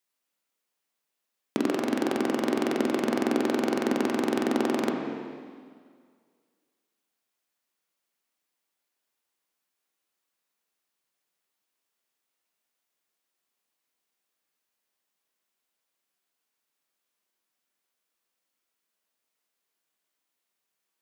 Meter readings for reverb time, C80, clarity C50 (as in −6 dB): 2.0 s, 4.0 dB, 3.0 dB